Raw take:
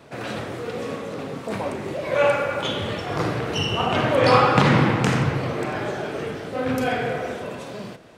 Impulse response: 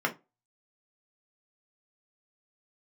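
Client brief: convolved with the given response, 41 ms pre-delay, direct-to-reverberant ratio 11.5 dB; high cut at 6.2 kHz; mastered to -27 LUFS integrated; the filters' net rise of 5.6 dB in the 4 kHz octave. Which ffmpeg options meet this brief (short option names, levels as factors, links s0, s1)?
-filter_complex "[0:a]lowpass=6200,equalizer=f=4000:t=o:g=8.5,asplit=2[s0][s1];[1:a]atrim=start_sample=2205,adelay=41[s2];[s1][s2]afir=irnorm=-1:irlink=0,volume=0.0841[s3];[s0][s3]amix=inputs=2:normalize=0,volume=0.531"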